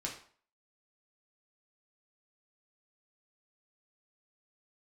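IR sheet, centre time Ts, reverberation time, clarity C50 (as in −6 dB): 23 ms, 0.50 s, 7.5 dB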